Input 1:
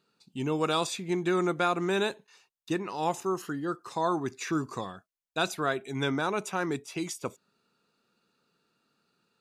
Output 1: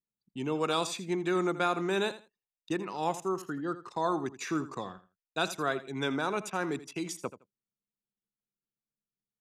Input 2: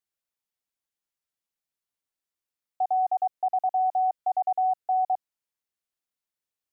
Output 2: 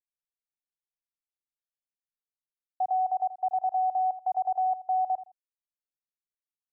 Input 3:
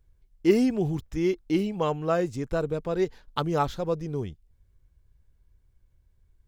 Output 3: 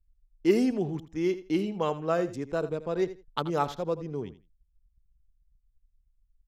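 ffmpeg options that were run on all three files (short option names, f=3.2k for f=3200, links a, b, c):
-filter_complex "[0:a]anlmdn=0.1,acrossover=split=150[a][b];[a]acompressor=threshold=-49dB:ratio=6[c];[c][b]amix=inputs=2:normalize=0,aecho=1:1:82|164:0.188|0.0358,aresample=32000,aresample=44100,volume=-2dB"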